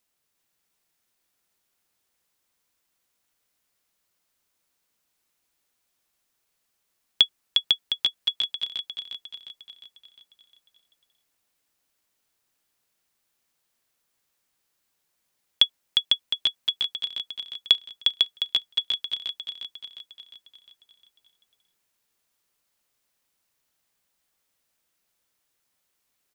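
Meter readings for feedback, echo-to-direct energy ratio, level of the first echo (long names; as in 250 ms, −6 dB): 53%, −2.5 dB, −4.0 dB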